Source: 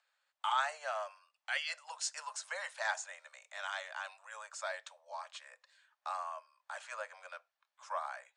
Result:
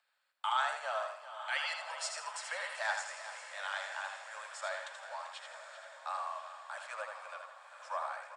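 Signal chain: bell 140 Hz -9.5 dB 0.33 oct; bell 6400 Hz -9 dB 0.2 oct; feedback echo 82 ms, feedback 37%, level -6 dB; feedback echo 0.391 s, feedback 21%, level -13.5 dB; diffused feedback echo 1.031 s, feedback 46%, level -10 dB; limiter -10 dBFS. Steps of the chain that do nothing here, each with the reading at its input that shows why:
bell 140 Hz: input band starts at 430 Hz; limiter -10 dBFS: input peak -20.0 dBFS

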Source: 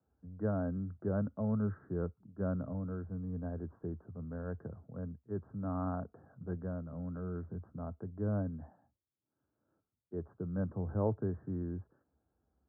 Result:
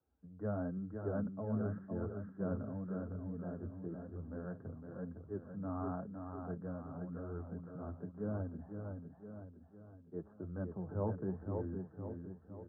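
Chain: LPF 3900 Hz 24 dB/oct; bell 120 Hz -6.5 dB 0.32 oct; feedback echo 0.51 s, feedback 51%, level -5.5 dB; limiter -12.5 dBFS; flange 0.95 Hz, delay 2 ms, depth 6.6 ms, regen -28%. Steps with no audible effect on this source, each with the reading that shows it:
LPF 3900 Hz: input band ends at 1400 Hz; limiter -12.5 dBFS: input peak -19.5 dBFS

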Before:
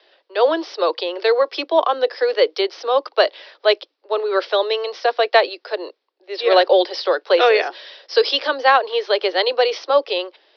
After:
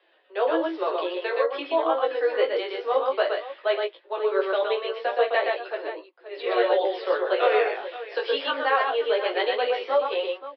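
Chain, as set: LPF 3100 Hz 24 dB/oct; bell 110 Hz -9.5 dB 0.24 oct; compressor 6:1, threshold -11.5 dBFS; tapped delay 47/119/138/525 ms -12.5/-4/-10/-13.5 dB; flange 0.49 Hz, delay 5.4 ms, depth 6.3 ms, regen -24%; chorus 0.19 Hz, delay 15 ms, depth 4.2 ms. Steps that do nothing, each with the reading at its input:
bell 110 Hz: input band starts at 270 Hz

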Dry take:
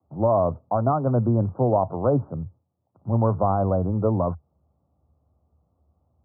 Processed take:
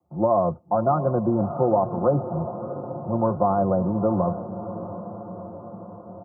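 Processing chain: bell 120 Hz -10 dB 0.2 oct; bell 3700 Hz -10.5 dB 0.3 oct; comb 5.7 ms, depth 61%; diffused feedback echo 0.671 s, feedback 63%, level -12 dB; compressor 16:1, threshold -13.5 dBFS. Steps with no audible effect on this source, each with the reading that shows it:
bell 3700 Hz: input band ends at 1400 Hz

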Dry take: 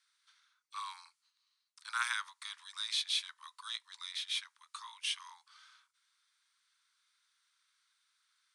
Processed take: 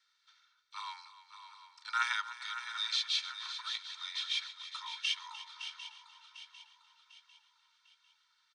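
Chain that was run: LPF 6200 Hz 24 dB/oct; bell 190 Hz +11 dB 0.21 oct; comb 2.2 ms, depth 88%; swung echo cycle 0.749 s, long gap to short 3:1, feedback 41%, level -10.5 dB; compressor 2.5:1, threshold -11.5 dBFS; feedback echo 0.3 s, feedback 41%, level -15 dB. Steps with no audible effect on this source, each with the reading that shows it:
bell 190 Hz: input band starts at 810 Hz; compressor, threshold -11.5 dBFS: input peak -19.5 dBFS

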